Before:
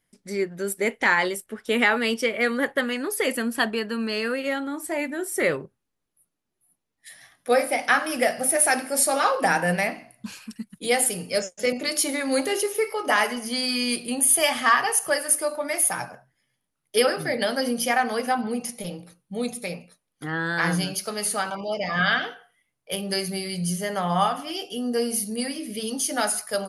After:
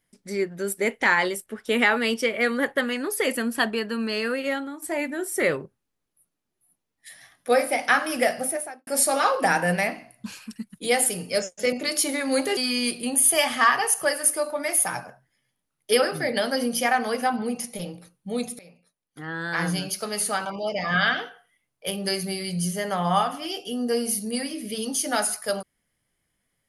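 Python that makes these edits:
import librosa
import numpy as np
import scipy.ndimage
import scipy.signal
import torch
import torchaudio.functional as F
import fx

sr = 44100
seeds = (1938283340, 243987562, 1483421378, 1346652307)

y = fx.studio_fade_out(x, sr, start_s=8.31, length_s=0.56)
y = fx.edit(y, sr, fx.fade_out_to(start_s=4.54, length_s=0.28, floor_db=-11.0),
    fx.cut(start_s=12.57, length_s=1.05),
    fx.fade_in_from(start_s=19.64, length_s=1.42, floor_db=-21.0), tone=tone)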